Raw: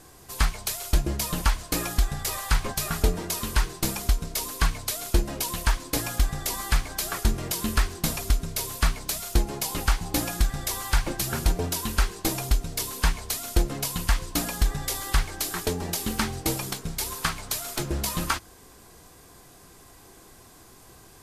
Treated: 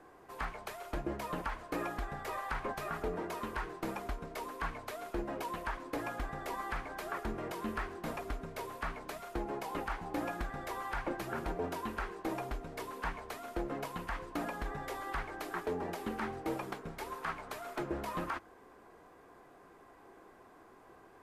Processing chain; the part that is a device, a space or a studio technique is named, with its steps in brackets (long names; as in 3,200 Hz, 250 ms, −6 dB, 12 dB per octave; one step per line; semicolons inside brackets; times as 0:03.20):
DJ mixer with the lows and highs turned down (three-way crossover with the lows and the highs turned down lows −15 dB, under 250 Hz, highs −23 dB, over 2,100 Hz; brickwall limiter −24 dBFS, peak gain reduction 10 dB)
level −2 dB